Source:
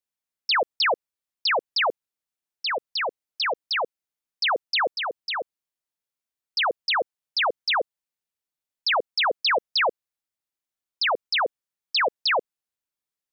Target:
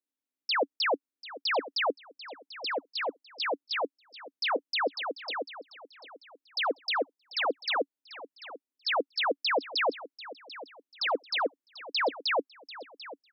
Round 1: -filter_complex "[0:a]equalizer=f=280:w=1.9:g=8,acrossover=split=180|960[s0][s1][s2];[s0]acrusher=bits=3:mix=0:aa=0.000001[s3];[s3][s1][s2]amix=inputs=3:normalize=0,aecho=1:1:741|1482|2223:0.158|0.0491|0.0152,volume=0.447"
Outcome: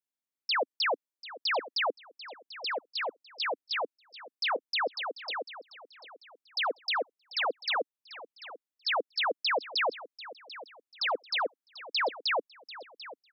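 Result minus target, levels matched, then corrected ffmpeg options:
250 Hz band -8.0 dB
-filter_complex "[0:a]equalizer=f=280:w=1.9:g=20,acrossover=split=180|960[s0][s1][s2];[s0]acrusher=bits=3:mix=0:aa=0.000001[s3];[s3][s1][s2]amix=inputs=3:normalize=0,aecho=1:1:741|1482|2223:0.158|0.0491|0.0152,volume=0.447"

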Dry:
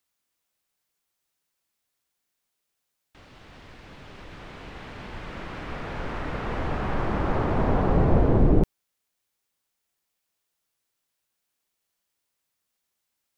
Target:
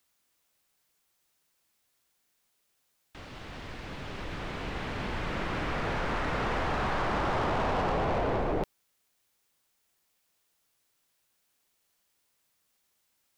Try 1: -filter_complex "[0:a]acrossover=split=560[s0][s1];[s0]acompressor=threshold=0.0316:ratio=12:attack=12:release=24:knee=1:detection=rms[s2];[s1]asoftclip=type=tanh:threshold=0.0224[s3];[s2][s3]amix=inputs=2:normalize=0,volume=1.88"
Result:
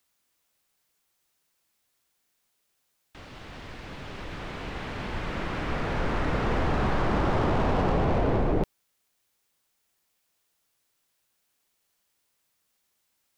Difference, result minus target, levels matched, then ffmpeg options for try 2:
compression: peak gain reduction -8 dB
-filter_complex "[0:a]acrossover=split=560[s0][s1];[s0]acompressor=threshold=0.0119:ratio=12:attack=12:release=24:knee=1:detection=rms[s2];[s1]asoftclip=type=tanh:threshold=0.0224[s3];[s2][s3]amix=inputs=2:normalize=0,volume=1.88"

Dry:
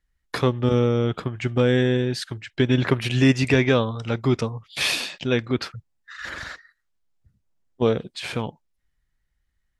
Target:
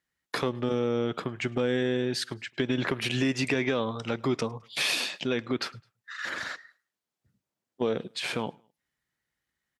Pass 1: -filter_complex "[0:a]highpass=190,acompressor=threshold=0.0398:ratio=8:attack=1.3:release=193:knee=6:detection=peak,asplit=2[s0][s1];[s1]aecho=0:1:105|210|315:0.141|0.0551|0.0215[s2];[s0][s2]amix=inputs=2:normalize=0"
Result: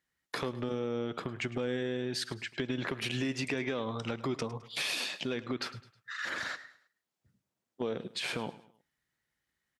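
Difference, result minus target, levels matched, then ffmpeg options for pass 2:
compression: peak gain reduction +7 dB; echo-to-direct +10 dB
-filter_complex "[0:a]highpass=190,acompressor=threshold=0.1:ratio=8:attack=1.3:release=193:knee=6:detection=peak,asplit=2[s0][s1];[s1]aecho=0:1:105|210:0.0447|0.0174[s2];[s0][s2]amix=inputs=2:normalize=0"

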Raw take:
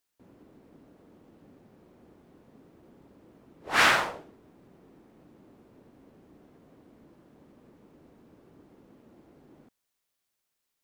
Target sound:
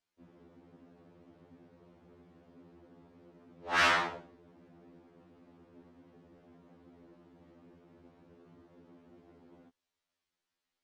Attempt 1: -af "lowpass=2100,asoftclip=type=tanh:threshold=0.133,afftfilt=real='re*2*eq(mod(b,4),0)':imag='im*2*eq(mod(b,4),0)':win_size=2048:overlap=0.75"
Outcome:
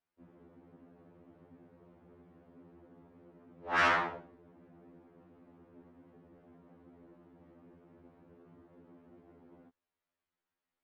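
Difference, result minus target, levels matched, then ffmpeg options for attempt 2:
4 kHz band -4.5 dB
-af "lowpass=5100,asoftclip=type=tanh:threshold=0.133,afftfilt=real='re*2*eq(mod(b,4),0)':imag='im*2*eq(mod(b,4),0)':win_size=2048:overlap=0.75"

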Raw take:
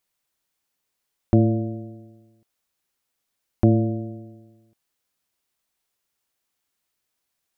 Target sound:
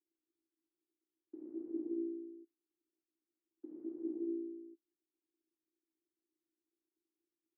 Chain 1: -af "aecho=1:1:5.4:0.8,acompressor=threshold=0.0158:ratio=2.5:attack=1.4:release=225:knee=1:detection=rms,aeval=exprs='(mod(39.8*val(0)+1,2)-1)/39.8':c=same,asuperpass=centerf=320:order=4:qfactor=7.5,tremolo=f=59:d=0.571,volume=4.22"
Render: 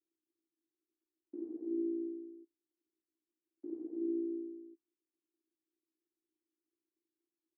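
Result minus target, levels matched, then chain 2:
compression: peak gain reduction +6.5 dB
-af "aecho=1:1:5.4:0.8,acompressor=threshold=0.0531:ratio=2.5:attack=1.4:release=225:knee=1:detection=rms,aeval=exprs='(mod(39.8*val(0)+1,2)-1)/39.8':c=same,asuperpass=centerf=320:order=4:qfactor=7.5,tremolo=f=59:d=0.571,volume=4.22"

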